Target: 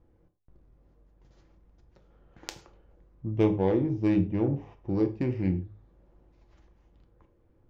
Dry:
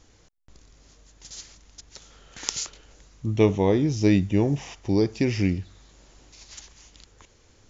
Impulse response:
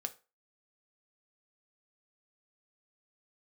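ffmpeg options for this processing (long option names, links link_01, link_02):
-filter_complex "[0:a]adynamicsmooth=sensitivity=0.5:basefreq=890,bandreject=frequency=104.1:width_type=h:width=4,bandreject=frequency=208.2:width_type=h:width=4,bandreject=frequency=312.3:width_type=h:width=4,bandreject=frequency=416.4:width_type=h:width=4,bandreject=frequency=520.5:width_type=h:width=4,bandreject=frequency=624.6:width_type=h:width=4,bandreject=frequency=728.7:width_type=h:width=4,bandreject=frequency=832.8:width_type=h:width=4[link_01];[1:a]atrim=start_sample=2205,afade=type=out:start_time=0.13:duration=0.01,atrim=end_sample=6174,asetrate=30429,aresample=44100[link_02];[link_01][link_02]afir=irnorm=-1:irlink=0,volume=-5dB"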